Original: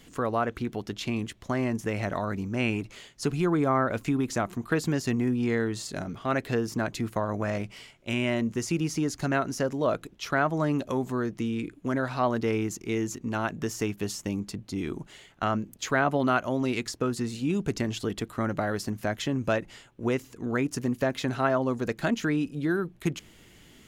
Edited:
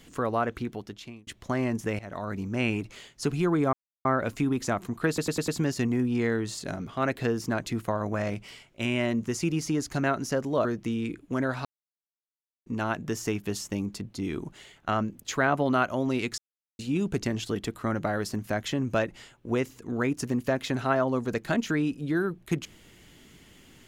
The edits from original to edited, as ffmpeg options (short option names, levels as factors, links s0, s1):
-filter_complex "[0:a]asplit=13[s0][s1][s2][s3][s4][s5][s6][s7][s8][s9][s10][s11][s12];[s0]atrim=end=1.27,asetpts=PTS-STARTPTS,afade=t=out:st=0.53:d=0.74[s13];[s1]atrim=start=1.27:end=1.99,asetpts=PTS-STARTPTS,afade=t=in:d=0.004:c=hsin,afade=t=out:st=0.716:d=0.004:c=hsin:silence=0.125893[s14];[s2]atrim=start=1.99:end=3.73,asetpts=PTS-STARTPTS,afade=t=in:d=0.61:c=qsin:silence=0.125893,afade=t=out:st=1.736:d=0.004:c=hsin,apad=pad_dur=0.32[s15];[s3]atrim=start=3.73:end=4.862,asetpts=PTS-STARTPTS,afade=t=in:d=0.004:c=hsin[s16];[s4]atrim=start=4.758:end=4.862[s17];[s5]atrim=start=4.758:end=4.862[s18];[s6]atrim=start=4.758:end=4.862[s19];[s7]atrim=start=4.758:end=9.932[s20];[s8]atrim=start=11.188:end=12.19,asetpts=PTS-STARTPTS,afade=t=out:st=0.998:d=0.004:c=hsin[s21];[s9]atrim=start=12.19:end=13.2,asetpts=PTS-STARTPTS,volume=0[s22];[s10]atrim=start=13.2:end=16.92,asetpts=PTS-STARTPTS,afade=t=in:d=0.004:c=hsin,afade=t=out:st=3.716:d=0.004:c=hsin[s23];[s11]atrim=start=16.92:end=17.33,asetpts=PTS-STARTPTS,volume=0[s24];[s12]atrim=start=17.33,asetpts=PTS-STARTPTS,afade=t=in:d=0.004:c=hsin[s25];[s13][s14][s15][s16]concat=n=4:v=0:a=1[s26];[s26][s17]acrossfade=d=0.004:c1=hsin:c2=hsin[s27];[s27][s18]acrossfade=d=0.004:c1=hsin:c2=hsin[s28];[s28][s19]acrossfade=d=0.004:c1=hsin:c2=hsin[s29];[s29][s20]acrossfade=d=0.004:c1=hsin:c2=hsin[s30];[s21][s22][s23][s24][s25]concat=n=5:v=0:a=1[s31];[s30][s31]acrossfade=d=0.004:c1=hsin:c2=hsin"